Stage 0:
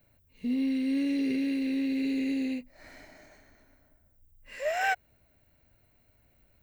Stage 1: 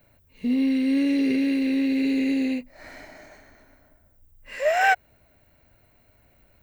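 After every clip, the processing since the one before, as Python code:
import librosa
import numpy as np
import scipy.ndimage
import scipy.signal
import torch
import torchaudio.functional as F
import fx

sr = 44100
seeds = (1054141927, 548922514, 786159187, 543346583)

y = fx.peak_eq(x, sr, hz=940.0, db=4.0, octaves=2.8)
y = F.gain(torch.from_numpy(y), 5.0).numpy()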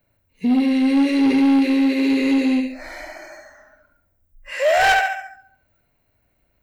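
y = fx.room_flutter(x, sr, wall_m=11.9, rt60_s=0.73)
y = 10.0 ** (-19.5 / 20.0) * np.tanh(y / 10.0 ** (-19.5 / 20.0))
y = fx.noise_reduce_blind(y, sr, reduce_db=16)
y = F.gain(torch.from_numpy(y), 8.0).numpy()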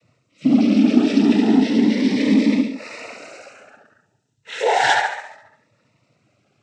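y = fx.law_mismatch(x, sr, coded='mu')
y = fx.noise_vocoder(y, sr, seeds[0], bands=12)
y = fx.notch_cascade(y, sr, direction='rising', hz=0.34)
y = F.gain(torch.from_numpy(y), 1.5).numpy()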